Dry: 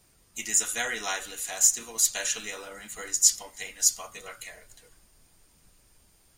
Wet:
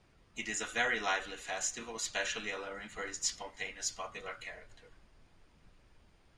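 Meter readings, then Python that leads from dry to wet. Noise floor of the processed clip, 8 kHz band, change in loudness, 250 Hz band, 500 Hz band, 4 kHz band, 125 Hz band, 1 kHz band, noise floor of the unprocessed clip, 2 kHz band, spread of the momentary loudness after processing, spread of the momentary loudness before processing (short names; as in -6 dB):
-66 dBFS, -15.5 dB, -12.0 dB, 0.0 dB, 0.0 dB, -7.0 dB, n/a, 0.0 dB, -63 dBFS, -0.5 dB, 12 LU, 20 LU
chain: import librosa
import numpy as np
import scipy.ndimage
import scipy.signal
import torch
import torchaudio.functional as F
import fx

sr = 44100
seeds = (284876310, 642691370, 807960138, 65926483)

y = scipy.signal.sosfilt(scipy.signal.butter(2, 3000.0, 'lowpass', fs=sr, output='sos'), x)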